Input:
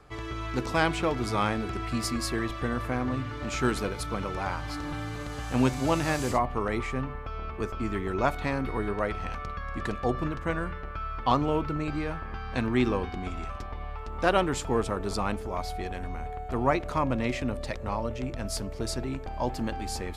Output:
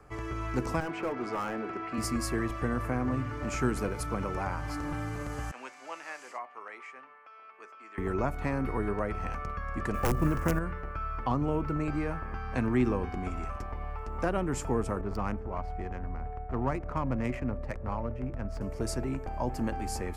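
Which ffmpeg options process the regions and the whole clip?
-filter_complex "[0:a]asettb=1/sr,asplit=3[s0][s1][s2];[s0]atrim=end=0.804[s3];[s1]atrim=start=0.8:end=1.98,asetpts=PTS-STARTPTS,afade=t=in:d=0.004:c=qsin,afade=t=out:st=1.176:d=0.004:c=qsin,highpass=280,lowpass=3300,asoftclip=type=hard:threshold=0.0501[s4];[s2]atrim=start=1.976[s5];[s3][s4]acrossfade=d=0.004:c1=hsin:c2=qsin[s6];[s6][s5]acrossfade=d=0.004:c1=qsin:c2=hsin,asettb=1/sr,asplit=3[s7][s8][s9];[s7]atrim=end=5.514[s10];[s8]atrim=start=5.51:end=7.98,asetpts=PTS-STARTPTS,afade=t=in:d=0.004:c=qsin,afade=t=out:st=2.466:d=0.004:c=qsin,aderivative,acontrast=32,highpass=340,lowpass=2600[s11];[s9]atrim=start=7.976[s12];[s10][s11]acrossfade=d=0.004:c1=hsin:c2=qsin[s13];[s13][s12]acrossfade=d=0.004:c1=qsin:c2=hsin,asettb=1/sr,asplit=3[s14][s15][s16];[s14]atrim=end=9.944[s17];[s15]atrim=start=9.94:end=10.59,asetpts=PTS-STARTPTS,afade=t=in:d=0.004:c=qsin,afade=t=out:st=0.646:d=0.004:c=qsin,acontrast=32,aeval=exprs='(mod(4.47*val(0)+1,2)-1)/4.47':c=same,acrusher=bits=6:mode=log:mix=0:aa=0.000001[s18];[s16]atrim=start=10.586[s19];[s17][s18]acrossfade=d=0.004:c1=hsin:c2=qsin[s20];[s20][s19]acrossfade=d=0.004:c1=qsin:c2=hsin,asettb=1/sr,asplit=3[s21][s22][s23];[s21]atrim=end=15.014[s24];[s22]atrim=start=15.01:end=18.61,asetpts=PTS-STARTPTS,afade=t=in:d=0.004:c=qsin,afade=t=out:st=3.596:d=0.004:c=qsin,equalizer=f=450:t=o:w=2.2:g=-4,adynamicsmooth=sensitivity=3:basefreq=1300[s25];[s23]atrim=start=18.606[s26];[s24][s25]acrossfade=d=0.004:c1=hsin:c2=qsin[s27];[s27][s26]acrossfade=d=0.004:c1=qsin:c2=hsin,equalizer=f=3700:w=2.1:g=-13.5,acrossover=split=300[s28][s29];[s29]acompressor=threshold=0.0316:ratio=4[s30];[s28][s30]amix=inputs=2:normalize=0"

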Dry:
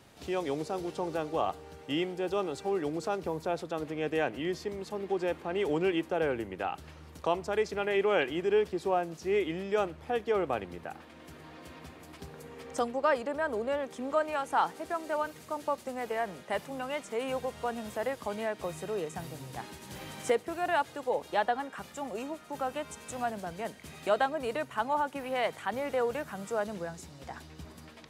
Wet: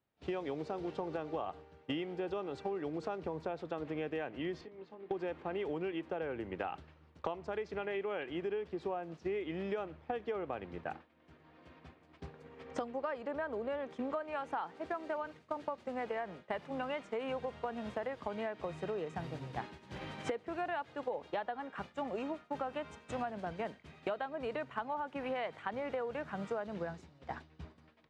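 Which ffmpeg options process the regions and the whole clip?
-filter_complex "[0:a]asettb=1/sr,asplit=3[s0][s1][s2];[s0]atrim=end=4.614[s3];[s1]atrim=start=4.61:end=5.11,asetpts=PTS-STARTPTS,afade=t=in:d=0.004:c=qsin,afade=t=out:st=0.496:d=0.004:c=qsin,acompressor=threshold=0.00794:ratio=8:attack=3.2:release=140:knee=1:detection=peak,highpass=130,lowpass=4500,asplit=2[s4][s5];[s5]adelay=23,volume=0.355[s6];[s4][s6]amix=inputs=2:normalize=0,atrim=end_sample=22050[s7];[s2]atrim=start=5.106[s8];[s3][s7]acrossfade=d=0.004:c1=hsin:c2=qsin[s9];[s9][s8]acrossfade=d=0.004:c1=qsin:c2=hsin,agate=range=0.0224:threshold=0.0141:ratio=3:detection=peak,lowpass=3200,acompressor=threshold=0.01:ratio=12,volume=1.88"

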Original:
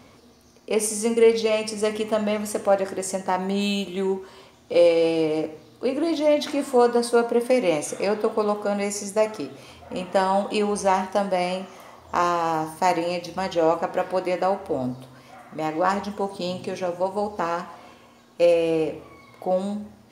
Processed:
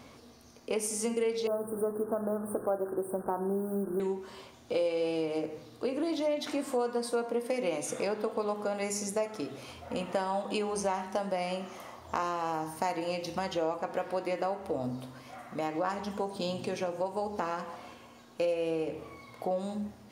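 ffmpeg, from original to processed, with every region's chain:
-filter_complex "[0:a]asettb=1/sr,asplit=3[s0][s1][s2];[s0]atrim=end=1.474[s3];[s1]atrim=start=1.47:end=4,asetpts=PTS-STARTPTS,afade=t=in:d=0.004:c=qsin,afade=t=out:st=2.526:d=0.004:c=qsin,highpass=f=100:w=0.5412,highpass=f=100:w=1.3066,equalizer=f=120:t=q:w=4:g=4,equalizer=f=370:t=q:w=4:g=8,equalizer=f=3200:t=q:w=4:g=4,lowpass=f=9300:w=0.5412,lowpass=f=9300:w=1.3066,acrusher=bits=5:mix=0:aa=0.5,asuperstop=centerf=4000:order=20:qfactor=0.53[s4];[s2]atrim=start=3.996[s5];[s3][s4]acrossfade=d=0.004:c1=hsin:c2=qsin[s6];[s6][s5]acrossfade=d=0.004:c1=qsin:c2=hsin,bandreject=f=50.94:t=h:w=4,bandreject=f=101.88:t=h:w=4,bandreject=f=152.82:t=h:w=4,bandreject=f=203.76:t=h:w=4,bandreject=f=254.7:t=h:w=4,bandreject=f=305.64:t=h:w=4,bandreject=f=356.58:t=h:w=4,bandreject=f=407.52:t=h:w=4,bandreject=f=458.46:t=h:w=4,bandreject=f=509.4:t=h:w=4,acompressor=threshold=0.0355:ratio=3,volume=0.841"

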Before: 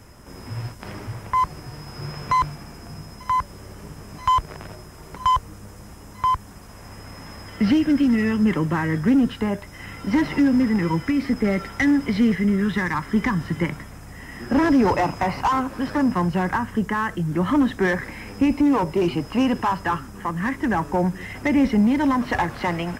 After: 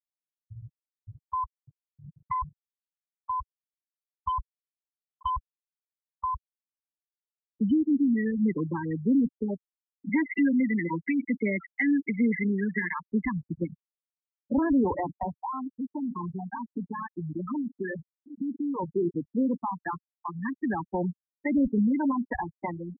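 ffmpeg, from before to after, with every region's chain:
-filter_complex "[0:a]asettb=1/sr,asplit=3[s0][s1][s2];[s0]atrim=end=10.094[s3];[s1]atrim=start=10.09:end=13.23,asetpts=PTS-STARTPTS,afade=t=in:d=0.004:c=qsin,afade=t=out:st=3.136:d=0.004:c=qsin,highpass=f=160:w=0.5412,highpass=f=160:w=1.3066,equalizer=f=2400:w=1.3:g=10.5[s4];[s2]atrim=start=13.226[s5];[s3][s4]acrossfade=d=0.004:c1=hsin:c2=qsin[s6];[s6][s5]acrossfade=d=0.004:c1=qsin:c2=hsin,asettb=1/sr,asplit=3[s7][s8][s9];[s7]atrim=end=15.394[s10];[s8]atrim=start=15.39:end=18.79,asetpts=PTS-STARTPTS,afade=t=in:d=0.004:c=qsin,afade=t=out:st=3.396:d=0.004:c=qsin,acompressor=threshold=0.0891:ratio=16:attack=3.2:release=140:knee=1:detection=peak,aecho=1:1:739:0.282,atrim=end_sample=149940[s11];[s9]atrim=start=18.786[s12];[s10][s11]acrossfade=d=0.004:c1=hsin:c2=qsin[s13];[s13][s12]acrossfade=d=0.004:c1=qsin:c2=hsin,afftfilt=real='re*gte(hypot(re,im),0.251)':imag='im*gte(hypot(re,im),0.251)':win_size=1024:overlap=0.75,equalizer=f=120:t=o:w=0.89:g=-9.5,acrossover=split=390[s14][s15];[s15]acompressor=threshold=0.0355:ratio=2[s16];[s14][s16]amix=inputs=2:normalize=0,volume=0.631"

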